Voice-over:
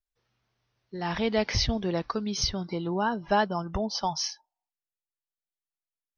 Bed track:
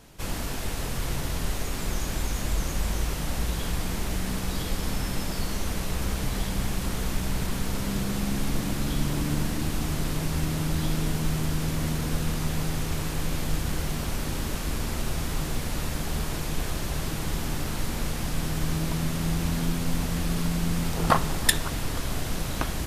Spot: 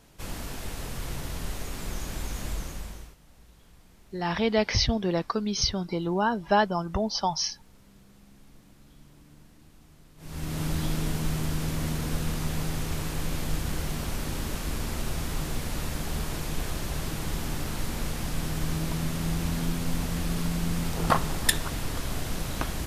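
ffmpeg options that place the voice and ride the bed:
ffmpeg -i stem1.wav -i stem2.wav -filter_complex "[0:a]adelay=3200,volume=2dB[link_01];[1:a]volume=20dB,afade=type=out:start_time=2.48:duration=0.68:silence=0.0794328,afade=type=in:start_time=10.17:duration=0.47:silence=0.0562341[link_02];[link_01][link_02]amix=inputs=2:normalize=0" out.wav

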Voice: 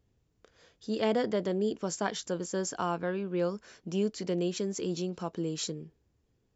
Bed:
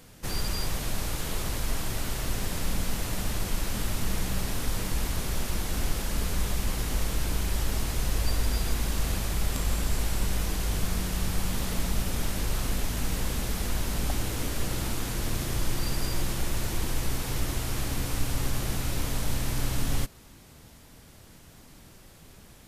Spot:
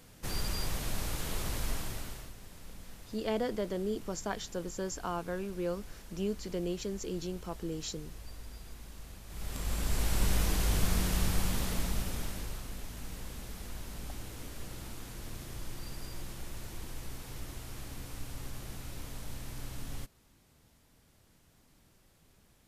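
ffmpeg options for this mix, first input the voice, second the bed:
ffmpeg -i stem1.wav -i stem2.wav -filter_complex "[0:a]adelay=2250,volume=-4.5dB[link_01];[1:a]volume=15dB,afade=type=out:start_time=1.66:duration=0.67:silence=0.16788,afade=type=in:start_time=9.26:duration=1.02:silence=0.105925,afade=type=out:start_time=11.13:duration=1.51:silence=0.223872[link_02];[link_01][link_02]amix=inputs=2:normalize=0" out.wav

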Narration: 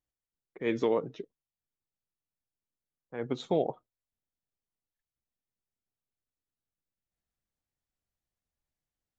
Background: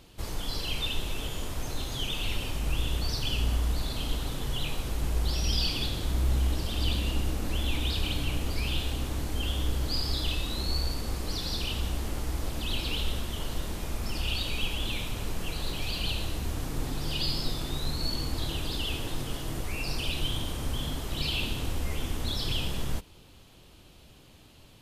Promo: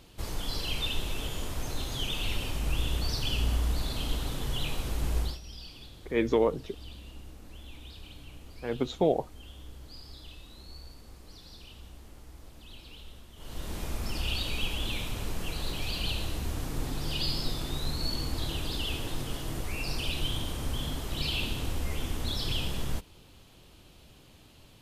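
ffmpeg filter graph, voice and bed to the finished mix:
ffmpeg -i stem1.wav -i stem2.wav -filter_complex "[0:a]adelay=5500,volume=3dB[link_01];[1:a]volume=16dB,afade=type=out:start_time=5.19:duration=0.2:silence=0.141254,afade=type=in:start_time=13.36:duration=0.42:silence=0.149624[link_02];[link_01][link_02]amix=inputs=2:normalize=0" out.wav

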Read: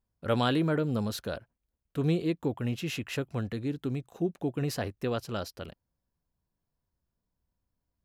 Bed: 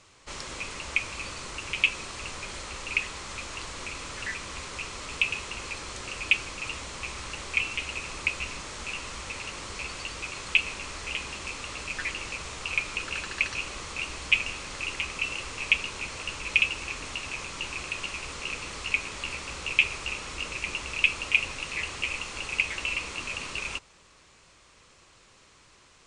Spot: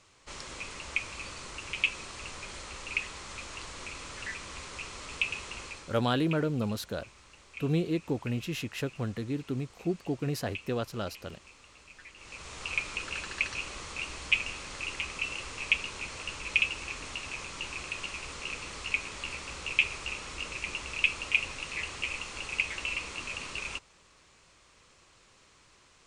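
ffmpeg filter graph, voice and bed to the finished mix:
ffmpeg -i stem1.wav -i stem2.wav -filter_complex "[0:a]adelay=5650,volume=-1dB[link_01];[1:a]volume=10.5dB,afade=type=out:start_time=5.59:duration=0.42:silence=0.199526,afade=type=in:start_time=12.15:duration=0.5:silence=0.177828[link_02];[link_01][link_02]amix=inputs=2:normalize=0" out.wav

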